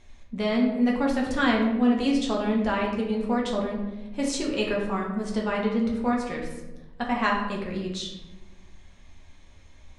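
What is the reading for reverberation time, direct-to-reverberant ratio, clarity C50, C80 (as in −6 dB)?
1.1 s, −2.5 dB, 4.0 dB, 7.0 dB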